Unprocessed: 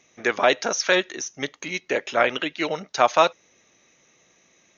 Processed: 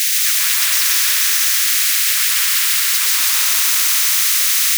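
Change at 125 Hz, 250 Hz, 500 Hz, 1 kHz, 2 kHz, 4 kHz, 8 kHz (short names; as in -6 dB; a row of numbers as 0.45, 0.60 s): under -25 dB, under -35 dB, under -25 dB, -6.5 dB, +6.0 dB, +14.0 dB, n/a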